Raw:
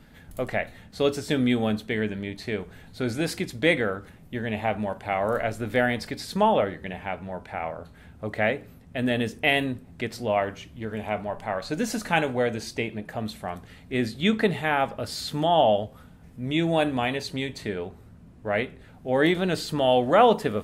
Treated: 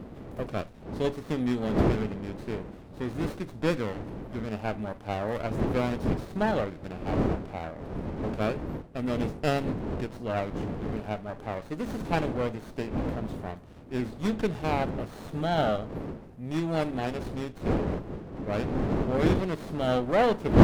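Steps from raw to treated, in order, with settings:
wind on the microphone 370 Hz −26 dBFS
windowed peak hold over 17 samples
level −5.5 dB

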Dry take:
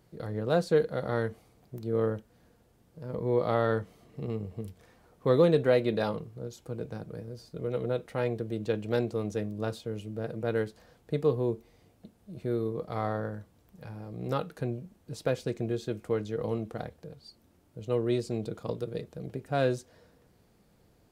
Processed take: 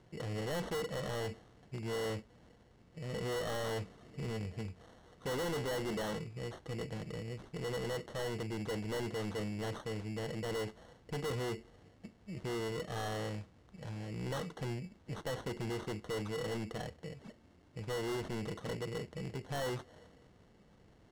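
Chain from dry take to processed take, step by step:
decimation without filtering 18×
low-pass filter 7,400 Hz 12 dB per octave
soft clipping −35.5 dBFS, distortion −3 dB
level +1 dB

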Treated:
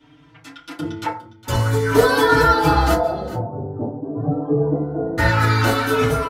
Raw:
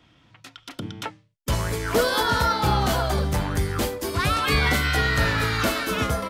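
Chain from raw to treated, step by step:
0:02.94–0:05.18: elliptic band-pass filter 120–700 Hz, stop band 50 dB
single-tap delay 409 ms −16 dB
feedback delay network reverb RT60 0.41 s, low-frequency decay 0.75×, high-frequency decay 0.35×, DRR −7.5 dB
barber-pole flanger 4.7 ms +0.49 Hz

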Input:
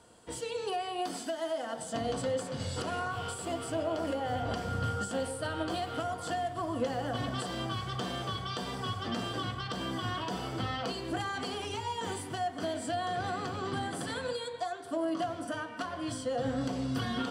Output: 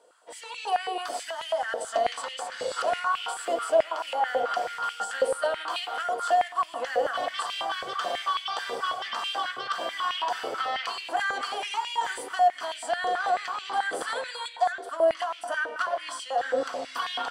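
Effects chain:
automatic gain control gain up to 8.5 dB
high-pass on a step sequencer 9.2 Hz 500–2,600 Hz
level −5.5 dB

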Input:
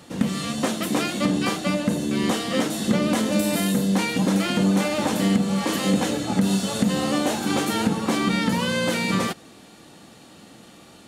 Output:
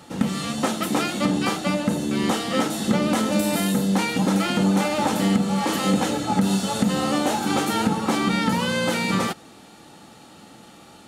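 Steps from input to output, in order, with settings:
hollow resonant body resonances 850/1,300 Hz, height 9 dB, ringing for 40 ms

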